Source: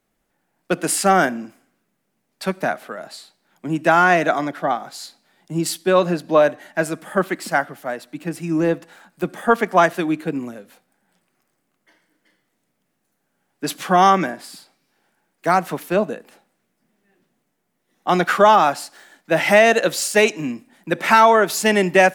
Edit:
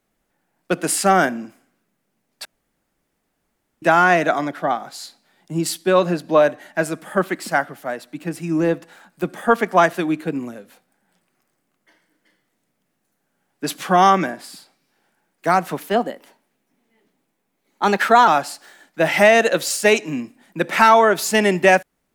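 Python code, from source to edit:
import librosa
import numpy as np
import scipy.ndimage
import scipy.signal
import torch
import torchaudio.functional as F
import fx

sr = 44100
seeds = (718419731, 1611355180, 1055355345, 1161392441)

y = fx.edit(x, sr, fx.room_tone_fill(start_s=2.45, length_s=1.37),
    fx.speed_span(start_s=15.87, length_s=2.72, speed=1.13), tone=tone)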